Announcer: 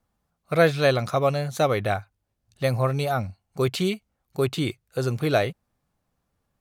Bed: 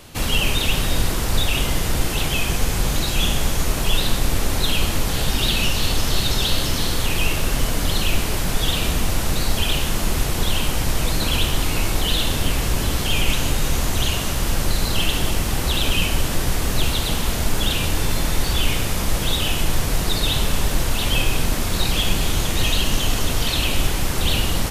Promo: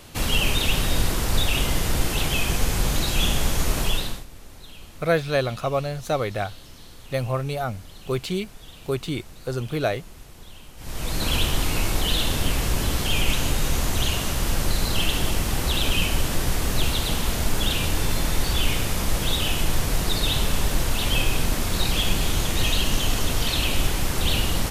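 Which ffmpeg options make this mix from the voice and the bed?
ffmpeg -i stem1.wav -i stem2.wav -filter_complex "[0:a]adelay=4500,volume=-2.5dB[link_01];[1:a]volume=19dB,afade=type=out:start_time=3.81:duration=0.44:silence=0.0841395,afade=type=in:start_time=10.77:duration=0.53:silence=0.0891251[link_02];[link_01][link_02]amix=inputs=2:normalize=0" out.wav

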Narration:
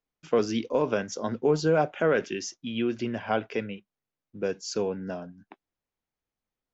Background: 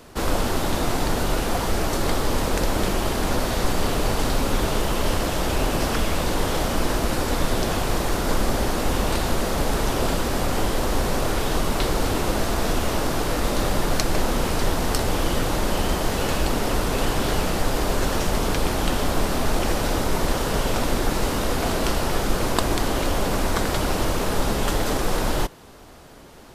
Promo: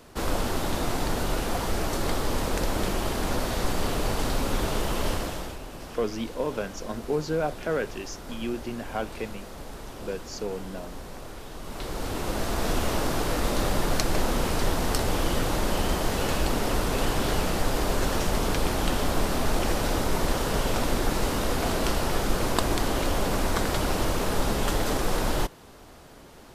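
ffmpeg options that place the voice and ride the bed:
ffmpeg -i stem1.wav -i stem2.wav -filter_complex "[0:a]adelay=5650,volume=-4dB[link_01];[1:a]volume=10dB,afade=type=out:start_time=5.07:duration=0.52:silence=0.223872,afade=type=in:start_time=11.58:duration=1.2:silence=0.188365[link_02];[link_01][link_02]amix=inputs=2:normalize=0" out.wav

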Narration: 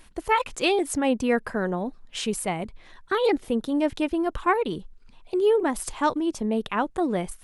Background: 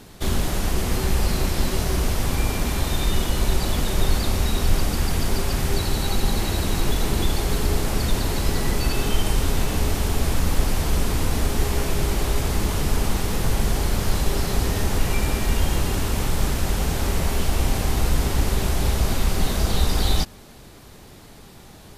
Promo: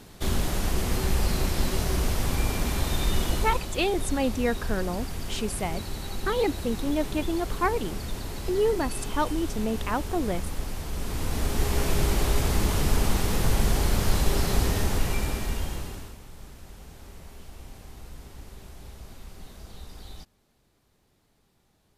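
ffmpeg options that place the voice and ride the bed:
ffmpeg -i stem1.wav -i stem2.wav -filter_complex "[0:a]adelay=3150,volume=-3.5dB[link_01];[1:a]volume=6.5dB,afade=type=out:start_time=3.31:duration=0.35:silence=0.398107,afade=type=in:start_time=10.93:duration=0.99:silence=0.316228,afade=type=out:start_time=14.58:duration=1.6:silence=0.0841395[link_02];[link_01][link_02]amix=inputs=2:normalize=0" out.wav

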